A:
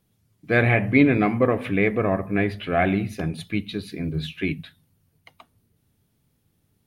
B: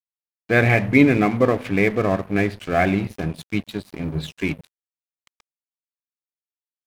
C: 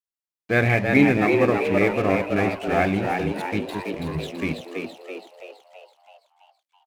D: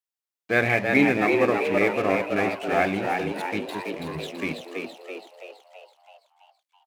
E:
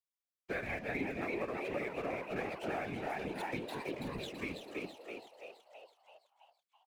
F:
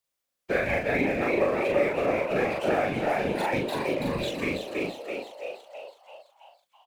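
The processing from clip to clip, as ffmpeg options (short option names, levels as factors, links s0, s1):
-af "aeval=exprs='sgn(val(0))*max(abs(val(0))-0.0141,0)':c=same,volume=1.41"
-filter_complex "[0:a]asplit=8[s0][s1][s2][s3][s4][s5][s6][s7];[s1]adelay=330,afreqshift=89,volume=0.596[s8];[s2]adelay=660,afreqshift=178,volume=0.327[s9];[s3]adelay=990,afreqshift=267,volume=0.18[s10];[s4]adelay=1320,afreqshift=356,volume=0.0989[s11];[s5]adelay=1650,afreqshift=445,volume=0.0543[s12];[s6]adelay=1980,afreqshift=534,volume=0.0299[s13];[s7]adelay=2310,afreqshift=623,volume=0.0164[s14];[s0][s8][s9][s10][s11][s12][s13][s14]amix=inputs=8:normalize=0,volume=0.708"
-af "highpass=f=310:p=1"
-af "acompressor=threshold=0.0501:ratio=6,afftfilt=real='hypot(re,im)*cos(2*PI*random(0))':imag='hypot(re,im)*sin(2*PI*random(1))':win_size=512:overlap=0.75,volume=0.75"
-filter_complex "[0:a]equalizer=f=560:t=o:w=0.31:g=7,asplit=2[s0][s1];[s1]adelay=40,volume=0.794[s2];[s0][s2]amix=inputs=2:normalize=0,volume=2.82"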